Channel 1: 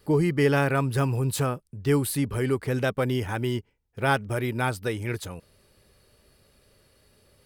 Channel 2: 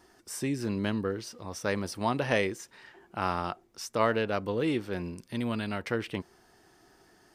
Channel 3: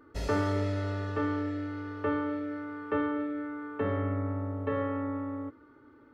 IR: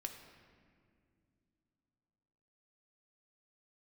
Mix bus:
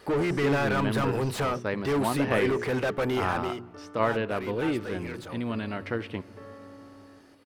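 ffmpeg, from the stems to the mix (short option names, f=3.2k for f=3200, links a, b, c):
-filter_complex "[0:a]bandreject=f=60:t=h:w=6,bandreject=f=120:t=h:w=6,bandreject=f=180:t=h:w=6,bandreject=f=240:t=h:w=6,bandreject=f=300:t=h:w=6,bandreject=f=360:t=h:w=6,bandreject=f=420:t=h:w=6,asplit=2[a][b];[b]highpass=f=720:p=1,volume=31dB,asoftclip=type=tanh:threshold=-8.5dB[c];[a][c]amix=inputs=2:normalize=0,lowpass=f=1.6k:p=1,volume=-6dB,volume=-9.5dB,afade=t=out:st=3.18:d=0.43:silence=0.354813,asplit=2[d][e];[1:a]highshelf=f=8.9k:g=-10,acrossover=split=3800[f][g];[g]acompressor=threshold=-57dB:ratio=4:attack=1:release=60[h];[f][h]amix=inputs=2:normalize=0,volume=-2dB,asplit=2[i][j];[j]volume=-7.5dB[k];[2:a]adelay=1700,volume=-18dB,asplit=2[l][m];[m]volume=-3dB[n];[e]apad=whole_len=345542[o];[l][o]sidechaincompress=threshold=-34dB:ratio=8:attack=16:release=1240[p];[3:a]atrim=start_sample=2205[q];[k][n]amix=inputs=2:normalize=0[r];[r][q]afir=irnorm=-1:irlink=0[s];[d][i][p][s]amix=inputs=4:normalize=0"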